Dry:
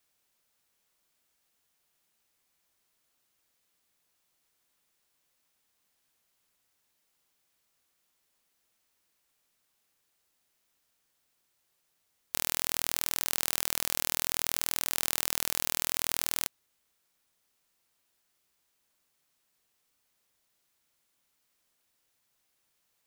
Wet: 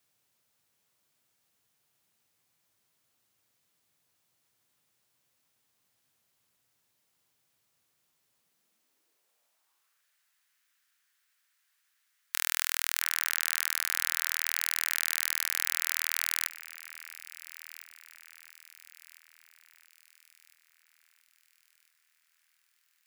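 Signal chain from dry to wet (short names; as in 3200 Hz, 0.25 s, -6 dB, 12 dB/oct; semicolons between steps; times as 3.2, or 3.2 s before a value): high-pass sweep 110 Hz -> 1600 Hz, 8.35–10.06; on a send: echo with dull and thin repeats by turns 0.677 s, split 2100 Hz, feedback 66%, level -13 dB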